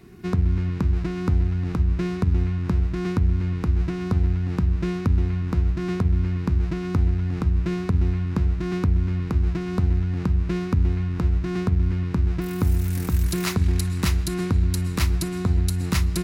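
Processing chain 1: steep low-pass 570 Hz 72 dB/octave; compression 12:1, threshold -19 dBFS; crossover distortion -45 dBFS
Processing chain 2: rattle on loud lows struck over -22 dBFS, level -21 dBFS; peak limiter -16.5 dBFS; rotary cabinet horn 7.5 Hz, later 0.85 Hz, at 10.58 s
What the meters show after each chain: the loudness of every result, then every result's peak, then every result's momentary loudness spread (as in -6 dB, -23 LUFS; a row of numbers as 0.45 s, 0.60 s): -27.0 LUFS, -28.0 LUFS; -12.5 dBFS, -15.5 dBFS; 1 LU, 1 LU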